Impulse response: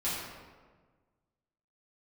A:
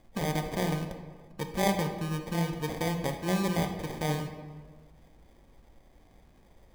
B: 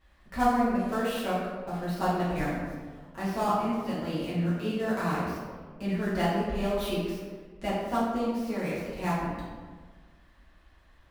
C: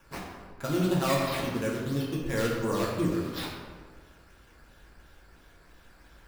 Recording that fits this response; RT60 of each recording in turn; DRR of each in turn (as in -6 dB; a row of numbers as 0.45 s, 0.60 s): B; 1.5 s, 1.5 s, 1.5 s; 4.5 dB, -10.5 dB, -5.0 dB